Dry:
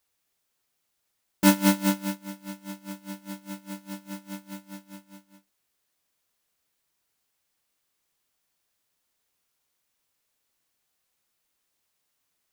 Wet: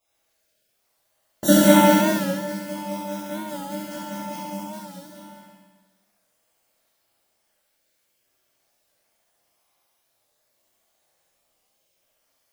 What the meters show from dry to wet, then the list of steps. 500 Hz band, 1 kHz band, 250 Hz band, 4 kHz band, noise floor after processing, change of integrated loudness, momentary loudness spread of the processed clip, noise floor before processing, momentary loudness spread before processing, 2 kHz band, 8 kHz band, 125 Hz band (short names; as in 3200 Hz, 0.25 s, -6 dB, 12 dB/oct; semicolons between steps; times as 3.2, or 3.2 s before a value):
+14.0 dB, +10.5 dB, +6.5 dB, +6.5 dB, -72 dBFS, +2.5 dB, 19 LU, -78 dBFS, 19 LU, +6.5 dB, +6.0 dB, n/a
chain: random spectral dropouts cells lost 39%; bell 630 Hz +11 dB 0.67 oct; flutter echo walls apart 11.8 m, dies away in 1.1 s; plate-style reverb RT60 1.2 s, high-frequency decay 0.75×, DRR -8.5 dB; record warp 45 rpm, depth 100 cents; gain -2.5 dB